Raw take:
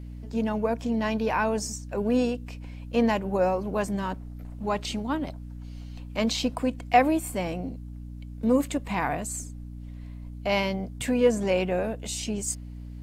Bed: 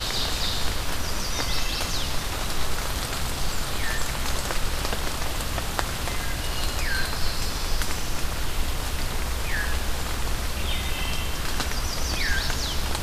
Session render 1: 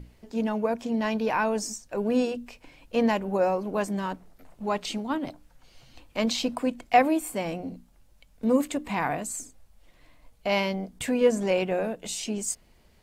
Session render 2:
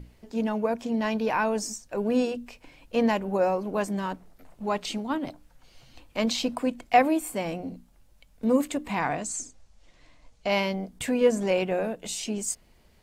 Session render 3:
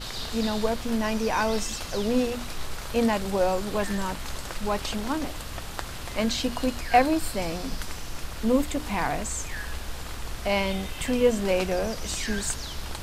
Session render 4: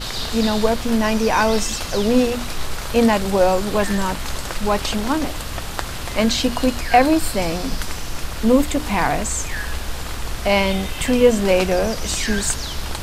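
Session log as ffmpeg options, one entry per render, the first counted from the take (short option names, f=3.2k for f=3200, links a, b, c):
-af "bandreject=f=60:t=h:w=6,bandreject=f=120:t=h:w=6,bandreject=f=180:t=h:w=6,bandreject=f=240:t=h:w=6,bandreject=f=300:t=h:w=6"
-filter_complex "[0:a]asettb=1/sr,asplit=3[a][b][c];[a]atrim=end=8.994[d];[b]atrim=start=8.99:end=10.49,asetpts=PTS-STARTPTS,afade=t=in:d=0.004:c=qsin,afade=t=out:st=1.496:d=0.004:c=qsin,lowpass=f=6.5k:t=q:w=1.8[e];[c]atrim=start=10.486[f];[d][e]acrossfade=d=0.004:c1=hsin:c2=qsin[g];[g][f]acrossfade=d=0.004:c1=qsin:c2=hsin"
-filter_complex "[1:a]volume=-8dB[a];[0:a][a]amix=inputs=2:normalize=0"
-af "volume=8dB,alimiter=limit=-3dB:level=0:latency=1"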